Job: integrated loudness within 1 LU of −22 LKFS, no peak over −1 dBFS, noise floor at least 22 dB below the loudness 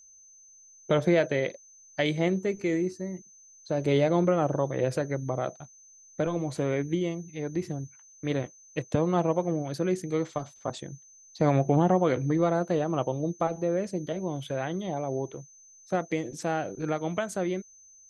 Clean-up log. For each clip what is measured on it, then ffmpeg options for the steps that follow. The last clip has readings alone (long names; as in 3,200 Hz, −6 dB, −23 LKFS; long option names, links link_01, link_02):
interfering tone 6,200 Hz; level of the tone −52 dBFS; integrated loudness −28.5 LKFS; sample peak −10.0 dBFS; target loudness −22.0 LKFS
→ -af "bandreject=frequency=6200:width=30"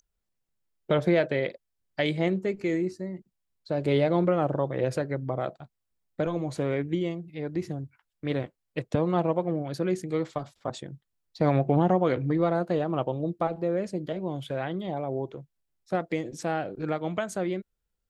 interfering tone none found; integrated loudness −28.5 LKFS; sample peak −10.0 dBFS; target loudness −22.0 LKFS
→ -af "volume=6.5dB"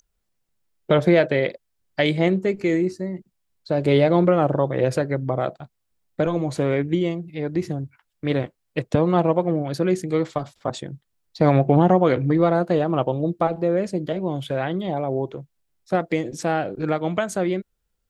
integrated loudness −22.0 LKFS; sample peak −3.5 dBFS; background noise floor −75 dBFS